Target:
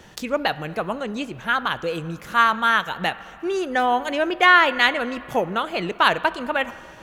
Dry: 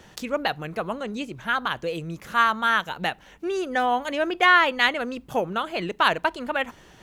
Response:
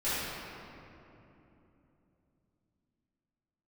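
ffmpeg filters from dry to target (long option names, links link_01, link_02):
-filter_complex "[0:a]asplit=2[link_01][link_02];[1:a]atrim=start_sample=2205,lowpass=4000,lowshelf=frequency=390:gain=-10[link_03];[link_02][link_03]afir=irnorm=-1:irlink=0,volume=-23.5dB[link_04];[link_01][link_04]amix=inputs=2:normalize=0,volume=2.5dB"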